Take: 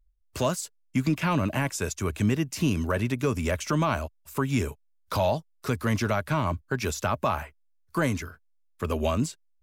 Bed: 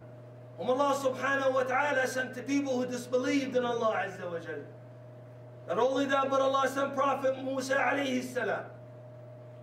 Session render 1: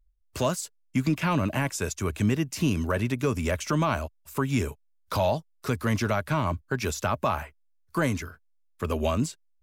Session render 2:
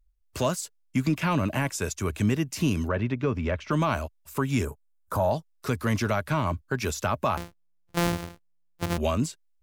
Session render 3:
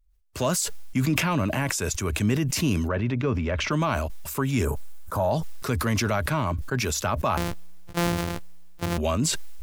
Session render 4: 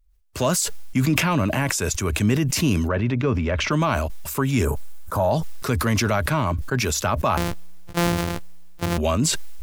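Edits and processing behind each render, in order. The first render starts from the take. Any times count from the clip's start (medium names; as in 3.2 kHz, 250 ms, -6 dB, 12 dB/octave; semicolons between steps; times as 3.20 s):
no audible change
2.88–3.71 s: distance through air 250 m; 4.65–5.31 s: high-order bell 3.4 kHz -15.5 dB; 7.37–8.98 s: sorted samples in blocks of 256 samples
decay stretcher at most 25 dB/s
trim +3.5 dB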